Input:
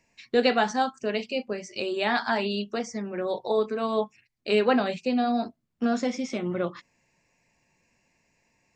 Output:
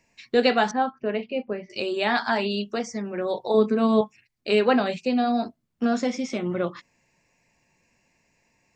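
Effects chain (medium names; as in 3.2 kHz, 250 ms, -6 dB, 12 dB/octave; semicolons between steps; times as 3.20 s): 0.71–1.70 s: Gaussian low-pass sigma 3.1 samples; 3.54–4.01 s: peaking EQ 200 Hz +10.5 dB 1.4 oct; trim +2 dB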